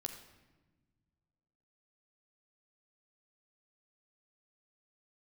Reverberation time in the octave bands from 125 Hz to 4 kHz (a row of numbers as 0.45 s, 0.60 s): 2.5 s, 2.1 s, 1.4 s, 1.1 s, 1.1 s, 0.85 s